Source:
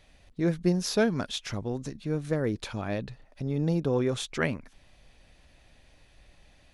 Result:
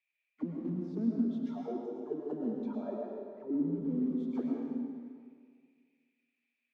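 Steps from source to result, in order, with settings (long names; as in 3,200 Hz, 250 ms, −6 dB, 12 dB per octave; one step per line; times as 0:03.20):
one scale factor per block 3 bits
low-pass filter 8,100 Hz
noise reduction from a noise print of the clip's start 20 dB
elliptic high-pass filter 160 Hz
low-shelf EQ 460 Hz +4 dB
in parallel at −1 dB: downward compressor, threshold −30 dBFS, peak gain reduction 12 dB
on the sum: soft clipping −18.5 dBFS, distortion −13 dB
flanger 1.8 Hz, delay 4.6 ms, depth 8.8 ms, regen −83%
envelope filter 240–2,400 Hz, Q 10, down, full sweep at −27.5 dBFS
comb and all-pass reverb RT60 1.9 s, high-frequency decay 0.95×, pre-delay 70 ms, DRR −1.5 dB
level +5 dB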